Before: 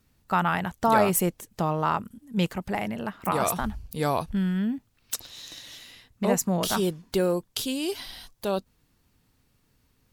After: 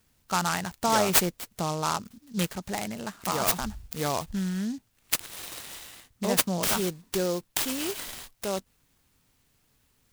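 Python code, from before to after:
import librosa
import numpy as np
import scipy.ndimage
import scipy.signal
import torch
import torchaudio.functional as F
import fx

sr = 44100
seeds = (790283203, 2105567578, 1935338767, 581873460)

y = fx.high_shelf(x, sr, hz=3400.0, db=12.0)
y = fx.noise_mod_delay(y, sr, seeds[0], noise_hz=5000.0, depth_ms=0.06)
y = y * librosa.db_to_amplitude(-4.0)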